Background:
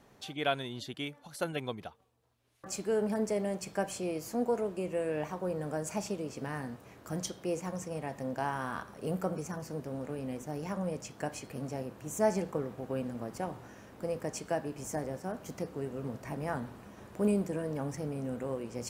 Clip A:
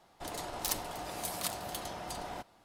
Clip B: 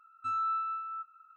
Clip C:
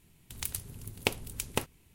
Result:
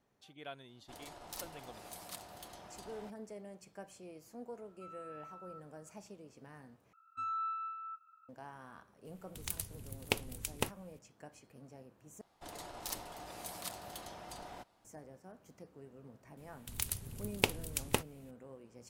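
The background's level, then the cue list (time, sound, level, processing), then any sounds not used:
background -16.5 dB
0.68 s: add A -11.5 dB
4.57 s: add B -14 dB + compression, threshold -36 dBFS
6.93 s: replace with B -6 dB
9.05 s: add C -4 dB
12.21 s: replace with A -7.5 dB
16.37 s: add C -1 dB

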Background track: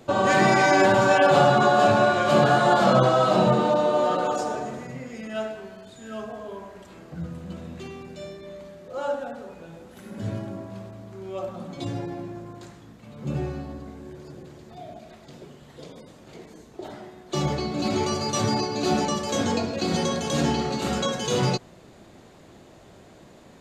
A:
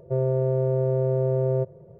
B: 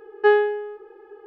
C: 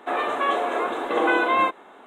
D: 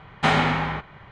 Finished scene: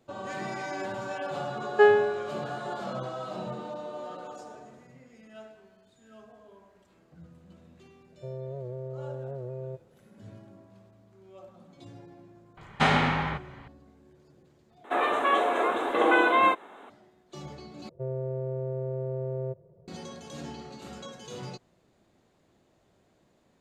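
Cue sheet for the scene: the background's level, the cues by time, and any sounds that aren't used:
background track -17 dB
1.55 s: add B -2 dB
8.12 s: add A -14.5 dB + warped record 78 rpm, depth 100 cents
12.57 s: add D -3 dB
14.84 s: replace with C -1 dB
17.89 s: replace with A -9.5 dB

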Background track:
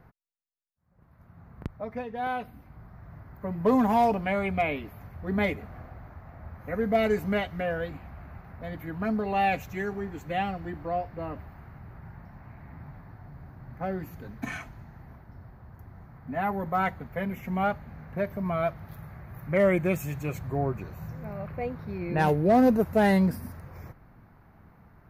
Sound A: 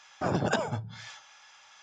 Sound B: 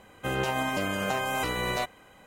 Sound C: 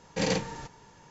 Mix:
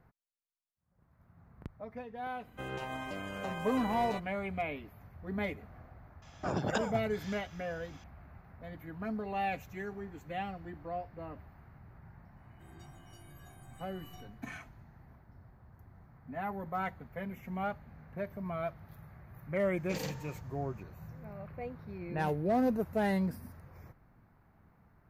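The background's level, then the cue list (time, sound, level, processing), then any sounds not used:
background track -9 dB
2.34 s: add B -11 dB + treble shelf 5.7 kHz -9.5 dB
6.22 s: add A -5.5 dB
12.36 s: add B -2 dB + inharmonic resonator 340 Hz, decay 0.82 s, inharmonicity 0.03
19.73 s: add C -12 dB

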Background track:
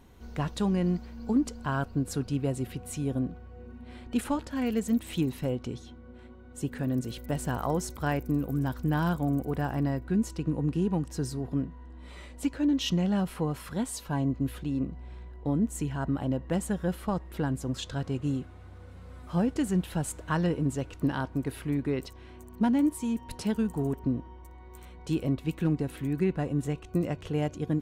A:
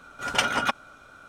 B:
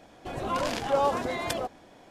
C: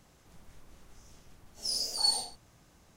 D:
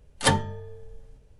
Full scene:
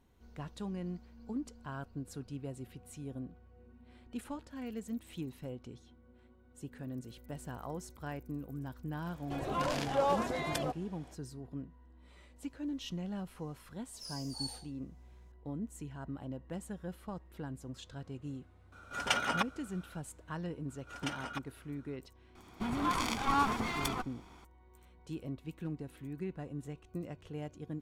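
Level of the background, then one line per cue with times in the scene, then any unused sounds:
background track -13 dB
9.05 s: add B -5 dB + hard clipper -17 dBFS
12.36 s: add C -14 dB
18.72 s: add A -7.5 dB
20.68 s: add A -17 dB + gain riding
22.35 s: add B -2.5 dB + comb filter that takes the minimum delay 0.89 ms
not used: D

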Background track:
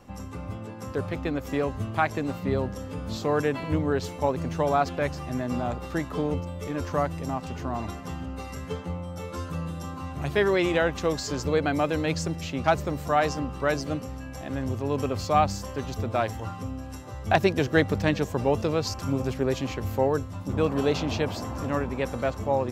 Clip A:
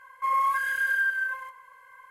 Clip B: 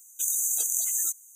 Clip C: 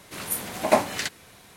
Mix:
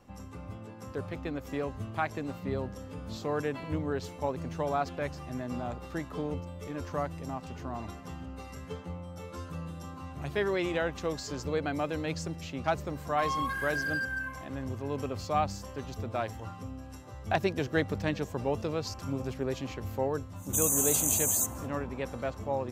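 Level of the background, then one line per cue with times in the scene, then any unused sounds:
background track -7 dB
12.95 s: add A -6.5 dB + hard clipper -23.5 dBFS
20.34 s: add B -1 dB, fades 0.10 s
not used: C

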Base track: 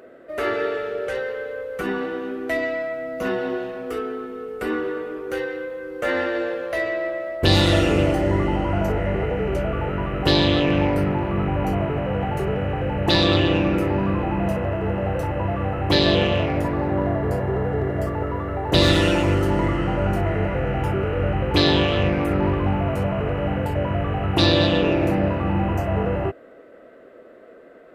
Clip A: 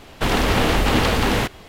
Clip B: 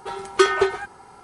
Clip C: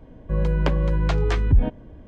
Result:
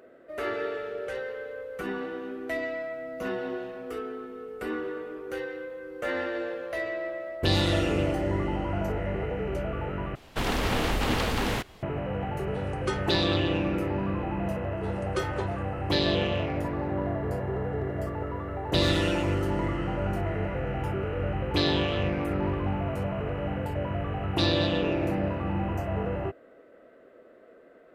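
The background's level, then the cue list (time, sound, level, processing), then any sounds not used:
base track -7.5 dB
10.15 s: replace with A -8.5 dB
12.48 s: add B -15 dB
14.77 s: add B -15 dB
not used: C

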